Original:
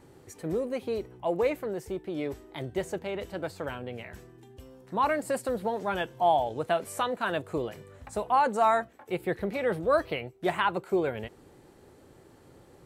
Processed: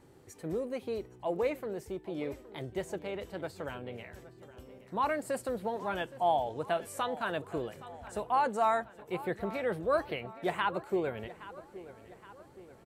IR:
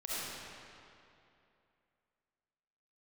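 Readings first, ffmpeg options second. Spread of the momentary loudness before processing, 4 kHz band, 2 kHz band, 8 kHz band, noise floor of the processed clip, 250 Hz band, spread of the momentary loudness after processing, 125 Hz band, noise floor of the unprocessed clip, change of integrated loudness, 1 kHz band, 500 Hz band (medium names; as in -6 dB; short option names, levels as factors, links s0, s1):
13 LU, -4.5 dB, -4.5 dB, -4.5 dB, -56 dBFS, -4.5 dB, 19 LU, -4.5 dB, -56 dBFS, -4.5 dB, -4.5 dB, -4.5 dB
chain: -filter_complex "[0:a]asplit=2[s0][s1];[s1]adelay=819,lowpass=f=4600:p=1,volume=0.15,asplit=2[s2][s3];[s3]adelay=819,lowpass=f=4600:p=1,volume=0.52,asplit=2[s4][s5];[s5]adelay=819,lowpass=f=4600:p=1,volume=0.52,asplit=2[s6][s7];[s7]adelay=819,lowpass=f=4600:p=1,volume=0.52,asplit=2[s8][s9];[s9]adelay=819,lowpass=f=4600:p=1,volume=0.52[s10];[s0][s2][s4][s6][s8][s10]amix=inputs=6:normalize=0,volume=0.596"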